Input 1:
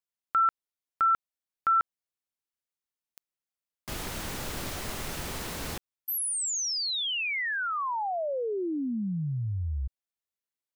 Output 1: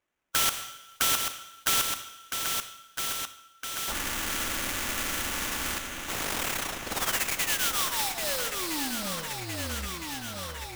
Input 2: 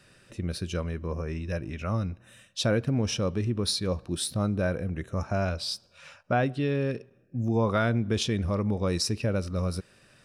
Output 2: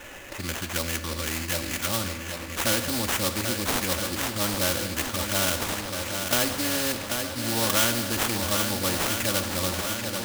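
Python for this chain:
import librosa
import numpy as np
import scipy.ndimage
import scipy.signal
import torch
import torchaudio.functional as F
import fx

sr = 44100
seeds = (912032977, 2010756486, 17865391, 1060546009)

y = scipy.signal.medfilt(x, 3)
y = fx.peak_eq(y, sr, hz=1700.0, db=8.5, octaves=1.4)
y = y + 0.93 * np.pad(y, (int(3.5 * sr / 1000.0), 0))[:len(y)]
y = fx.hpss(y, sr, part='percussive', gain_db=-3)
y = fx.env_phaser(y, sr, low_hz=180.0, high_hz=3200.0, full_db=-21.0)
y = fx.sample_hold(y, sr, seeds[0], rate_hz=4600.0, jitter_pct=20)
y = fx.echo_swing(y, sr, ms=1312, ratio=1.5, feedback_pct=49, wet_db=-11.0)
y = fx.rev_double_slope(y, sr, seeds[1], early_s=0.72, late_s=3.4, knee_db=-25, drr_db=13.0)
y = fx.spectral_comp(y, sr, ratio=2.0)
y = y * 10.0 ** (2.0 / 20.0)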